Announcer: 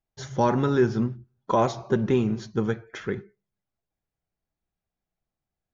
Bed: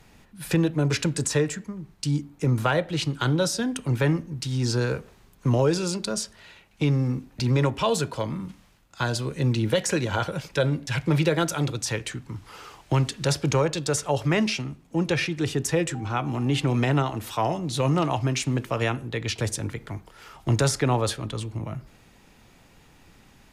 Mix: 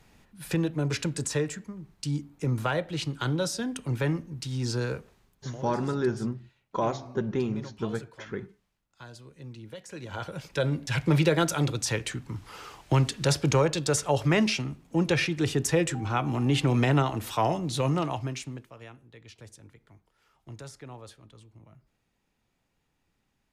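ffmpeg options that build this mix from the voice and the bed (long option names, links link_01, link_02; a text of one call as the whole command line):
ffmpeg -i stem1.wav -i stem2.wav -filter_complex "[0:a]adelay=5250,volume=-6dB[link_01];[1:a]volume=14.5dB,afade=type=out:start_time=4.9:duration=0.67:silence=0.177828,afade=type=in:start_time=9.89:duration=1.14:silence=0.105925,afade=type=out:start_time=17.51:duration=1.19:silence=0.0891251[link_02];[link_01][link_02]amix=inputs=2:normalize=0" out.wav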